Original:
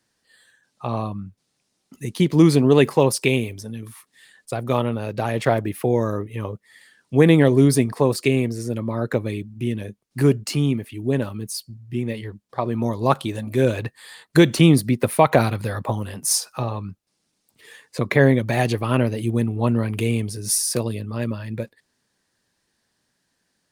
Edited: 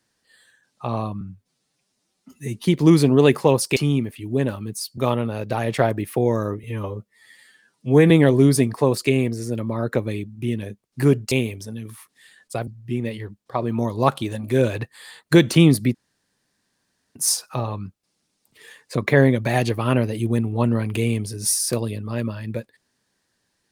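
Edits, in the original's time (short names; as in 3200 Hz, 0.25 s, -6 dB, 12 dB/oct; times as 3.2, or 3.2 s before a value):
1.21–2.16 stretch 1.5×
3.29–4.65 swap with 10.5–11.71
6.31–7.29 stretch 1.5×
14.98–16.19 room tone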